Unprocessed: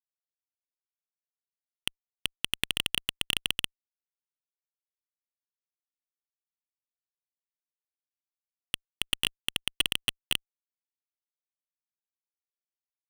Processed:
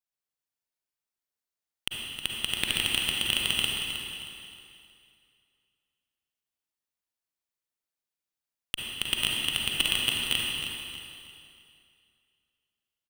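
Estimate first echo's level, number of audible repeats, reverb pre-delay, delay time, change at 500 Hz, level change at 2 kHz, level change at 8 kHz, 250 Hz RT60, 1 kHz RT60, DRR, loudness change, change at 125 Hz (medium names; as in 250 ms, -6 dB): -9.5 dB, 3, 34 ms, 314 ms, +4.0 dB, +4.5 dB, +4.0 dB, 2.5 s, 2.5 s, -2.5 dB, +3.0 dB, +4.5 dB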